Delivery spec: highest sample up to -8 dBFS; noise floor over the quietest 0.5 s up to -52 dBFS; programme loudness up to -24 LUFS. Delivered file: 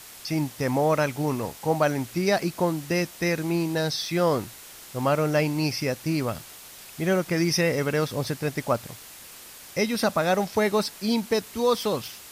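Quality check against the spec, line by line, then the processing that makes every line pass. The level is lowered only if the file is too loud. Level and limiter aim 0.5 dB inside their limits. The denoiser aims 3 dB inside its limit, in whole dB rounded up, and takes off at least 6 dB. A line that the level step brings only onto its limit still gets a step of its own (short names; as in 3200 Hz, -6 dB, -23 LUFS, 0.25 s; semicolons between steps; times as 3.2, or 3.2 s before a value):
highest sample -10.0 dBFS: OK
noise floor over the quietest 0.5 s -45 dBFS: fail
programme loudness -25.5 LUFS: OK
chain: denoiser 10 dB, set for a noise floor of -45 dBFS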